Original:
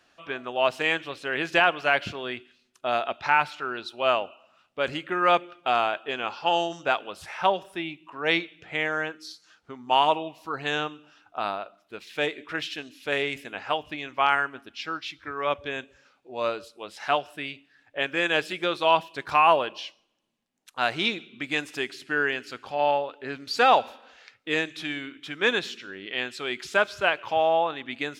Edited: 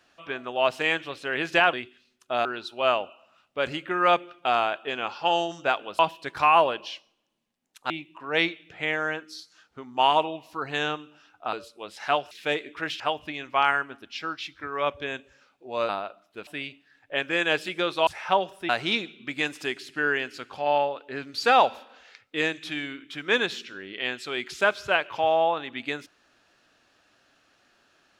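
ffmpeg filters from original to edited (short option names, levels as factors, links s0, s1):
-filter_complex "[0:a]asplit=12[s0][s1][s2][s3][s4][s5][s6][s7][s8][s9][s10][s11];[s0]atrim=end=1.732[s12];[s1]atrim=start=2.268:end=2.992[s13];[s2]atrim=start=3.658:end=7.202[s14];[s3]atrim=start=18.908:end=20.822[s15];[s4]atrim=start=7.818:end=11.452[s16];[s5]atrim=start=16.528:end=17.312[s17];[s6]atrim=start=12.028:end=12.722[s18];[s7]atrim=start=13.638:end=16.532[s19];[s8]atrim=start=11.448:end=12.032[s20];[s9]atrim=start=17.308:end=18.912[s21];[s10]atrim=start=7.198:end=7.822[s22];[s11]atrim=start=20.818[s23];[s12][s13]acrossfade=d=0.004:c1=hsin:c2=hsin[s24];[s24][s14]acrossfade=d=0.004:c1=hsin:c2=hsin[s25];[s25][s15]acrossfade=d=0.004:c1=hsin:c2=hsin[s26];[s26][s16]acrossfade=d=0.004:c1=hsin:c2=hsin[s27];[s27][s17]acrossfade=d=0.004:c1=hsin:c2=hsin[s28];[s28][s18]acrossfade=d=0.004:c1=hsin:c2=hsin[s29];[s29][s19]acrossfade=d=0.004:c1=hsin:c2=hsin[s30];[s30][s20]acrossfade=d=0.004:c1=hsin:c2=hsin[s31];[s31][s21]acrossfade=d=0.004:c1=hsin:c2=hsin[s32];[s32][s22]acrossfade=d=0.004:c1=hsin:c2=hsin[s33];[s33][s23]acrossfade=d=0.004:c1=hsin:c2=hsin"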